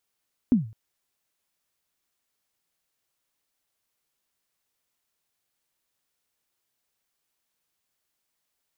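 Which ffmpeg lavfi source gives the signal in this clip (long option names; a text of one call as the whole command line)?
ffmpeg -f lavfi -i "aevalsrc='0.251*pow(10,-3*t/0.38)*sin(2*PI*(270*0.137/log(110/270)*(exp(log(110/270)*min(t,0.137)/0.137)-1)+110*max(t-0.137,0)))':duration=0.21:sample_rate=44100" out.wav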